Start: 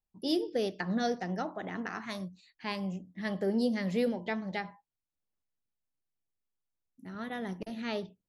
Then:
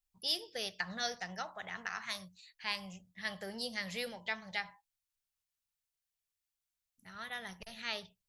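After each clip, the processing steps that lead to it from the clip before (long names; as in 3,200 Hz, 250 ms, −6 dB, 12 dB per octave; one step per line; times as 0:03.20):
guitar amp tone stack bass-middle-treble 10-0-10
level +6 dB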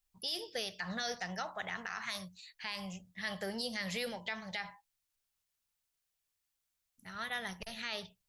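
brickwall limiter −31 dBFS, peak gain reduction 11.5 dB
level +4.5 dB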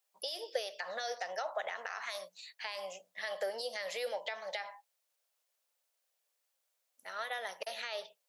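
downward compressor 4 to 1, threshold −41 dBFS, peak gain reduction 7.5 dB
four-pole ladder high-pass 490 Hz, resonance 60%
level +13.5 dB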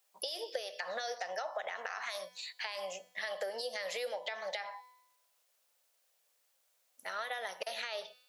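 tuned comb filter 250 Hz, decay 0.9 s, mix 50%
downward compressor 3 to 1, threshold −50 dBFS, peak gain reduction 11.5 dB
level +12.5 dB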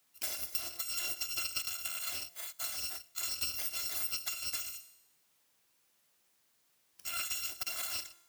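samples in bit-reversed order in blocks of 256 samples
level +2 dB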